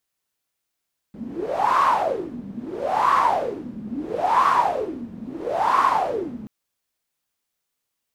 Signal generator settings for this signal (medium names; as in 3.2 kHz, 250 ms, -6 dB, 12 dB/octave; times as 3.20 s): wind-like swept noise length 5.33 s, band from 210 Hz, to 1.1 kHz, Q 11, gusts 4, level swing 16.5 dB